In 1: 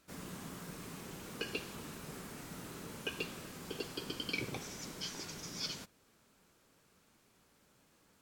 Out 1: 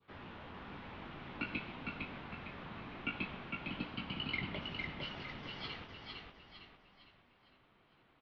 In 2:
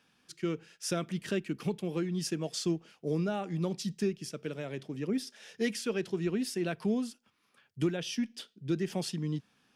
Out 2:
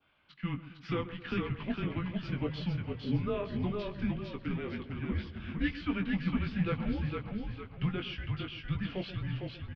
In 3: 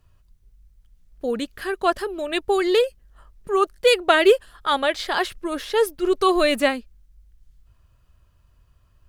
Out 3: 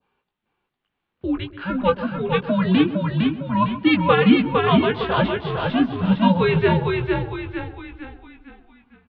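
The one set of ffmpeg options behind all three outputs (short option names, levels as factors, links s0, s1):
-filter_complex "[0:a]asplit=2[s0][s1];[s1]adelay=19,volume=0.531[s2];[s0][s2]amix=inputs=2:normalize=0,asplit=2[s3][s4];[s4]adelay=131,lowpass=f=1400:p=1,volume=0.224,asplit=2[s5][s6];[s6]adelay=131,lowpass=f=1400:p=1,volume=0.53,asplit=2[s7][s8];[s8]adelay=131,lowpass=f=1400:p=1,volume=0.53,asplit=2[s9][s10];[s10]adelay=131,lowpass=f=1400:p=1,volume=0.53,asplit=2[s11][s12];[s12]adelay=131,lowpass=f=1400:p=1,volume=0.53[s13];[s5][s7][s9][s11][s13]amix=inputs=5:normalize=0[s14];[s3][s14]amix=inputs=2:normalize=0,highpass=f=290:t=q:w=0.5412,highpass=f=290:t=q:w=1.307,lowpass=f=3600:t=q:w=0.5176,lowpass=f=3600:t=q:w=0.7071,lowpass=f=3600:t=q:w=1.932,afreqshift=-180,asplit=2[s15][s16];[s16]asplit=5[s17][s18][s19][s20][s21];[s17]adelay=456,afreqshift=-33,volume=0.668[s22];[s18]adelay=912,afreqshift=-66,volume=0.282[s23];[s19]adelay=1368,afreqshift=-99,volume=0.117[s24];[s20]adelay=1824,afreqshift=-132,volume=0.0495[s25];[s21]adelay=2280,afreqshift=-165,volume=0.0209[s26];[s22][s23][s24][s25][s26]amix=inputs=5:normalize=0[s27];[s15][s27]amix=inputs=2:normalize=0,adynamicequalizer=threshold=0.0141:dfrequency=2000:dqfactor=1.1:tfrequency=2000:tqfactor=1.1:attack=5:release=100:ratio=0.375:range=2:mode=cutabove:tftype=bell"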